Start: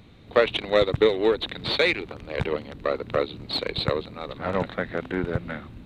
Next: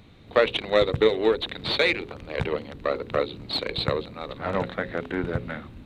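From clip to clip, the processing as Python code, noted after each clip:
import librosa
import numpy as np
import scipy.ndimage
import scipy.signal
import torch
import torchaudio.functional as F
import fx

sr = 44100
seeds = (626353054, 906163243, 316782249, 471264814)

y = fx.hum_notches(x, sr, base_hz=60, count=9)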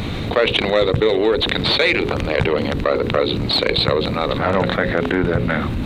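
y = fx.env_flatten(x, sr, amount_pct=70)
y = F.gain(torch.from_numpy(y), 1.5).numpy()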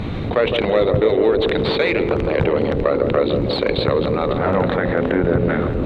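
y = fx.lowpass(x, sr, hz=1500.0, slope=6)
y = fx.echo_banded(y, sr, ms=160, feedback_pct=76, hz=420.0, wet_db=-5.0)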